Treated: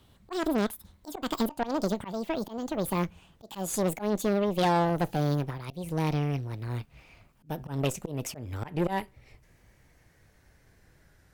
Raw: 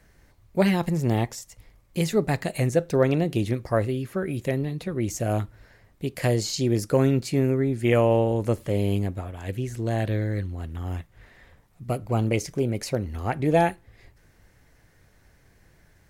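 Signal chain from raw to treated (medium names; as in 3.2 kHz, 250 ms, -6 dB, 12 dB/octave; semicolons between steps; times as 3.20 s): gliding tape speed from 191% -> 93%; slow attack 173 ms; Chebyshev shaper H 5 -20 dB, 8 -19 dB, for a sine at -8.5 dBFS; trim -6 dB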